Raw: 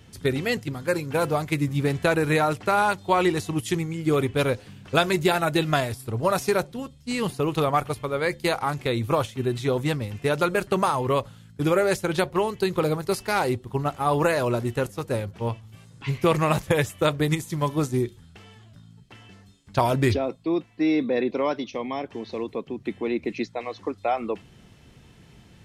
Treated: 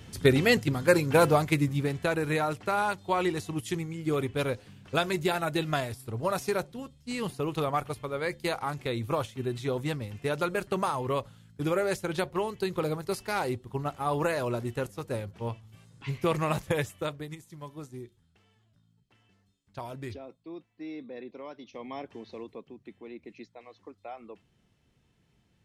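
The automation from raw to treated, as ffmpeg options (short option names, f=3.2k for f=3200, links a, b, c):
-af "volume=13dB,afade=t=out:st=1.19:d=0.71:silence=0.334965,afade=t=out:st=16.77:d=0.51:silence=0.266073,afade=t=in:st=21.56:d=0.43:silence=0.316228,afade=t=out:st=21.99:d=0.92:silence=0.334965"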